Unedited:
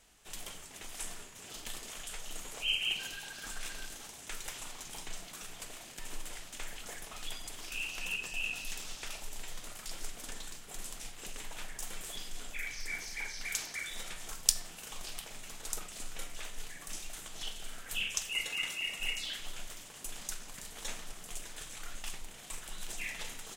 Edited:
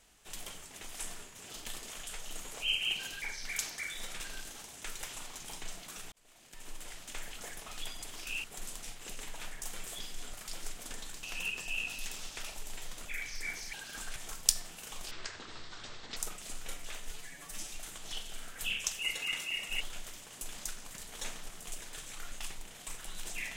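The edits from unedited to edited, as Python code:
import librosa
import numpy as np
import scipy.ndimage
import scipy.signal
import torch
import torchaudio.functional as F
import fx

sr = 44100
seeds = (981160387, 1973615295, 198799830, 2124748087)

y = fx.edit(x, sr, fx.swap(start_s=3.22, length_s=0.43, other_s=13.18, other_length_s=0.98),
    fx.fade_in_span(start_s=5.57, length_s=0.95),
    fx.swap(start_s=7.89, length_s=1.82, other_s=10.61, other_length_s=1.89),
    fx.speed_span(start_s=15.11, length_s=0.56, speed=0.53),
    fx.stretch_span(start_s=16.61, length_s=0.4, factor=1.5),
    fx.cut(start_s=19.11, length_s=0.33), tone=tone)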